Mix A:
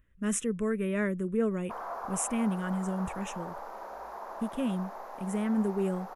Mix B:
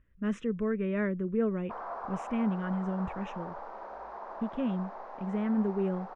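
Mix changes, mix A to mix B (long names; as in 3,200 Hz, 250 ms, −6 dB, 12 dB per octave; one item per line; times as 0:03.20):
speech: add high-shelf EQ 8,200 Hz −12 dB
master: add high-frequency loss of the air 220 metres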